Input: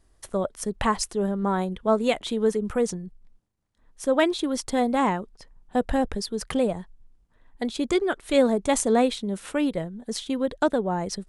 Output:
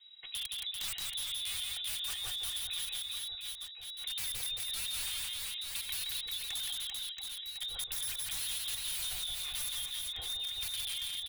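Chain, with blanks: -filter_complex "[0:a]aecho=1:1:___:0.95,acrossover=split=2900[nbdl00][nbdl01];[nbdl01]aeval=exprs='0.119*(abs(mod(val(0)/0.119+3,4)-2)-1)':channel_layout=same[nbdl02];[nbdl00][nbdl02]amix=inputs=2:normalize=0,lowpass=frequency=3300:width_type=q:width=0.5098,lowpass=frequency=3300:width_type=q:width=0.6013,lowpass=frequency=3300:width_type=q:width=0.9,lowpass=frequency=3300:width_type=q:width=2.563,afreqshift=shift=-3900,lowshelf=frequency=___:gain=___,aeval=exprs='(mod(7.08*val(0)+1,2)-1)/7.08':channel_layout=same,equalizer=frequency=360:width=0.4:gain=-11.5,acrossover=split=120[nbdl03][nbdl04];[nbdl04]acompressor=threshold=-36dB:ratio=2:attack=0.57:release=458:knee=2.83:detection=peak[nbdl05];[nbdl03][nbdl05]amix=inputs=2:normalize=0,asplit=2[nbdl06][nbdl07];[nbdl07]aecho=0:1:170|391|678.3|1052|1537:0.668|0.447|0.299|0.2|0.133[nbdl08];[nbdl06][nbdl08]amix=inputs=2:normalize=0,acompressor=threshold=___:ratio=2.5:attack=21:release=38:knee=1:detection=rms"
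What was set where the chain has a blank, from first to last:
2.9, 86, 6.5, -40dB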